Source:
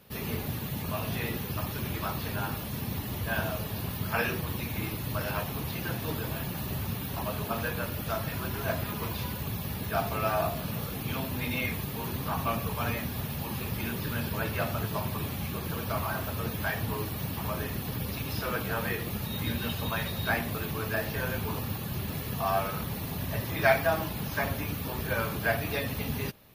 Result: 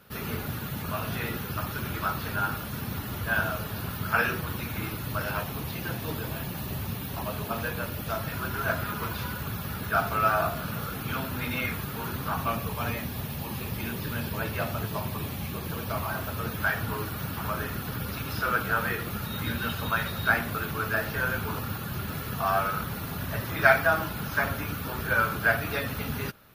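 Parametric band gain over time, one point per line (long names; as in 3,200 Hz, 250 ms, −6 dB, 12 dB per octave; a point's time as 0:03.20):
parametric band 1,400 Hz 0.39 octaves
0:04.75 +11.5 dB
0:05.77 +2.5 dB
0:08.13 +2.5 dB
0:08.61 +13.5 dB
0:12.07 +13.5 dB
0:12.74 +1.5 dB
0:16.09 +1.5 dB
0:16.71 +13 dB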